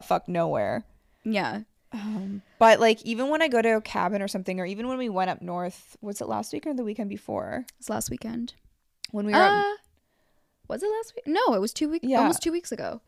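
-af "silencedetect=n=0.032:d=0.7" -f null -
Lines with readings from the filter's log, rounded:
silence_start: 9.74
silence_end: 10.70 | silence_duration: 0.96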